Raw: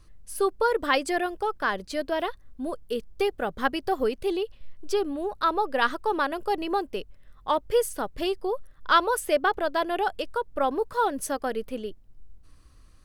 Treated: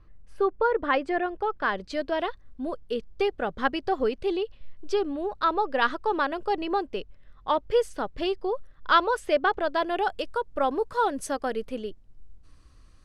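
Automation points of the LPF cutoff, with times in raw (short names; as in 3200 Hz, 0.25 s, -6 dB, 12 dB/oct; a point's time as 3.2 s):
1.21 s 2100 Hz
1.91 s 5000 Hz
9.57 s 5000 Hz
10.22 s 8400 Hz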